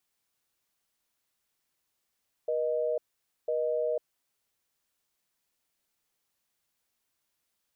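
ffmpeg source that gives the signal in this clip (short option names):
-f lavfi -i "aevalsrc='0.0355*(sin(2*PI*480*t)+sin(2*PI*620*t))*clip(min(mod(t,1),0.5-mod(t,1))/0.005,0,1)':d=1.66:s=44100"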